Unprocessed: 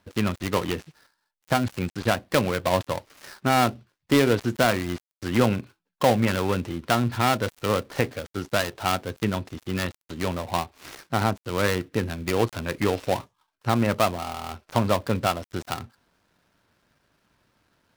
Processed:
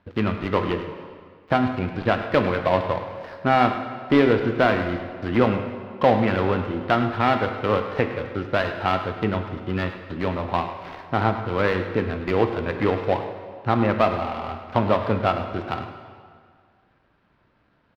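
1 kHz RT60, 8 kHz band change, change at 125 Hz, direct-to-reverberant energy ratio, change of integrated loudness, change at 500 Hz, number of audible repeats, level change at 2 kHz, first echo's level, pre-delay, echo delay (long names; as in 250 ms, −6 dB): 2.0 s, below −20 dB, +1.0 dB, 5.5 dB, +2.5 dB, +3.5 dB, 1, +2.0 dB, −13.0 dB, 13 ms, 103 ms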